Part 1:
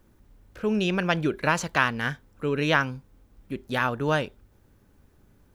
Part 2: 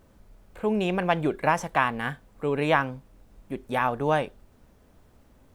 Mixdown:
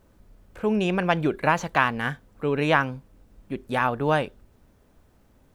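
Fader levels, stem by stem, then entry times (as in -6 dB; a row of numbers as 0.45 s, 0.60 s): -5.5 dB, -2.5 dB; 0.00 s, 0.00 s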